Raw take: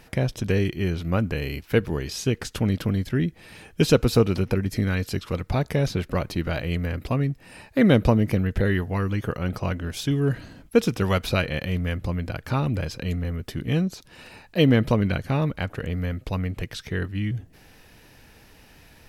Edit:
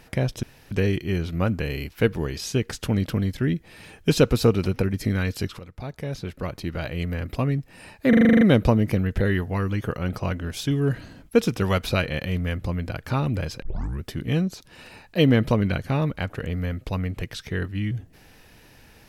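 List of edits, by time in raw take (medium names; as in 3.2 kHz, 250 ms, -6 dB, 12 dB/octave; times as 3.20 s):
0.43 s: insert room tone 0.28 s
5.31–7.13 s: fade in linear, from -15.5 dB
7.81 s: stutter 0.04 s, 9 plays
13.02 s: tape start 0.41 s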